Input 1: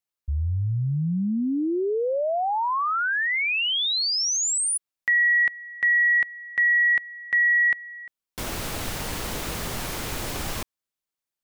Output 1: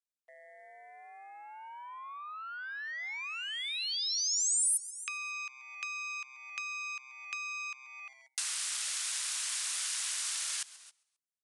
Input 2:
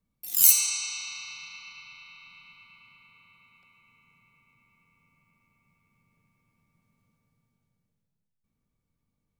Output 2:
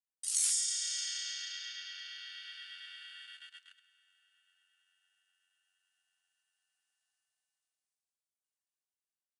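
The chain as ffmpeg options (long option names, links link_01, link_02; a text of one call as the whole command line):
ffmpeg -i in.wav -filter_complex "[0:a]aeval=exprs='val(0)*sin(2*PI*660*n/s)':channel_layout=same,aeval=exprs='0.631*sin(PI/2*3.98*val(0)/0.631)':channel_layout=same,highpass=frequency=1200:width=0.5412,highpass=frequency=1200:width=1.3066,asplit=2[link_01][link_02];[link_02]asplit=4[link_03][link_04][link_05][link_06];[link_03]adelay=134,afreqshift=-130,volume=-21dB[link_07];[link_04]adelay=268,afreqshift=-260,volume=-26dB[link_08];[link_05]adelay=402,afreqshift=-390,volume=-31.1dB[link_09];[link_06]adelay=536,afreqshift=-520,volume=-36.1dB[link_10];[link_07][link_08][link_09][link_10]amix=inputs=4:normalize=0[link_11];[link_01][link_11]amix=inputs=2:normalize=0,agate=range=-17dB:threshold=-48dB:ratio=16:release=43:detection=rms,aresample=22050,aresample=44100,dynaudnorm=framelen=290:gausssize=13:maxgain=11dB,afreqshift=-73,acompressor=threshold=-23dB:ratio=8:attack=13:release=378:knee=6:detection=rms,aderivative,volume=-4dB" out.wav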